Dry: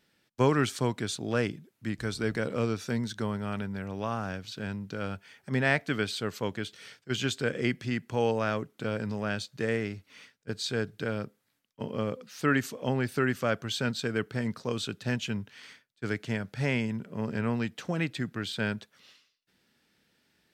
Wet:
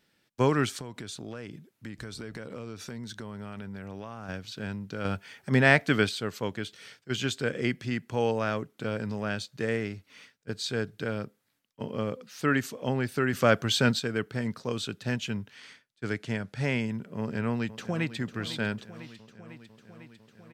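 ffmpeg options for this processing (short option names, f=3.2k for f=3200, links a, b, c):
-filter_complex "[0:a]asettb=1/sr,asplit=3[a][b][c];[a]atrim=end=0.804[d];[b]atrim=start=0.8:end=4.29,asetpts=PTS-STARTPTS,afade=t=in:d=0.004:c=qsin,afade=t=out:st=3.486:d=0.004:c=qsin,acompressor=threshold=-35dB:ratio=8:attack=3.2:release=140:knee=1:detection=peak[e];[c]atrim=start=4.286[f];[d][e]acrossfade=d=0.004:c1=hsin:c2=qsin[g];[g][f]acrossfade=d=0.004:c1=qsin:c2=hsin,asettb=1/sr,asplit=3[h][i][j];[h]atrim=end=15.564[k];[i]atrim=start=15.56:end=16.64,asetpts=PTS-STARTPTS,afade=t=in:d=0.004:c=qsin,afade=t=out:st=1.076:d=0.004:c=qsin,lowpass=f=12k:w=0.5412,lowpass=f=12k:w=1.3066[l];[j]atrim=start=16.636[m];[k][l]acrossfade=d=0.004:c1=hsin:c2=qsin[n];[n][m]acrossfade=d=0.004:c1=qsin:c2=hsin,asplit=2[o][p];[p]afade=t=in:st=17.19:d=0.01,afade=t=out:st=18.16:d=0.01,aecho=0:1:500|1000|1500|2000|2500|3000|3500|4000|4500|5000|5500:0.199526|0.149645|0.112234|0.0841751|0.0631313|0.0473485|0.0355114|0.0266335|0.0199752|0.0149814|0.011236[q];[o][q]amix=inputs=2:normalize=0,asplit=5[r][s][t][u][v];[r]atrim=end=5.052[w];[s]atrim=start=5.048:end=6.092,asetpts=PTS-STARTPTS,volume=5.5dB[x];[t]atrim=start=6.088:end=13.332[y];[u]atrim=start=13.328:end=13.992,asetpts=PTS-STARTPTS,volume=6.5dB[z];[v]atrim=start=13.988[aa];[w][x]acrossfade=d=0.004:c1=hsin:c2=hsin[ab];[ab][y]acrossfade=d=0.004:c1=hsin:c2=hsin[ac];[ac][z]acrossfade=d=0.004:c1=hsin:c2=hsin[ad];[ad][aa]acrossfade=d=0.004:c1=hsin:c2=hsin"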